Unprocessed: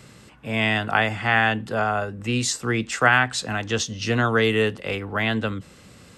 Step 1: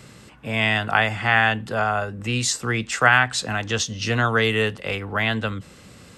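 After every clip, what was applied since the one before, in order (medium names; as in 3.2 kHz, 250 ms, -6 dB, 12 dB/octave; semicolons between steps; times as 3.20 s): dynamic bell 310 Hz, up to -6 dB, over -34 dBFS, Q 1; trim +2 dB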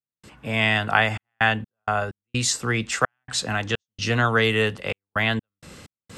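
reverse; upward compressor, threshold -37 dBFS; reverse; trance gate ".xxxx.x.x.xxx.xx" 64 bpm -60 dB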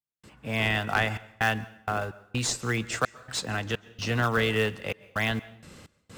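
in parallel at -11.5 dB: decimation with a swept rate 26×, swing 160% 3.2 Hz; on the sum: overload inside the chain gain 8 dB; plate-style reverb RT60 0.72 s, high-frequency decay 0.85×, pre-delay 115 ms, DRR 19.5 dB; trim -6 dB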